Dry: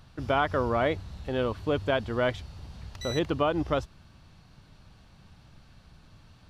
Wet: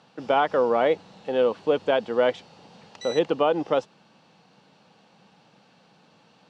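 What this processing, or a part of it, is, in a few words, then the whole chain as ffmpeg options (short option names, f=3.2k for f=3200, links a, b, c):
television speaker: -af "highpass=f=180:w=0.5412,highpass=f=180:w=1.3066,equalizer=f=190:t=q:w=4:g=3,equalizer=f=490:t=q:w=4:g=10,equalizer=f=820:t=q:w=4:g=8,equalizer=f=2.8k:t=q:w=4:g=4,lowpass=f=8.2k:w=0.5412,lowpass=f=8.2k:w=1.3066"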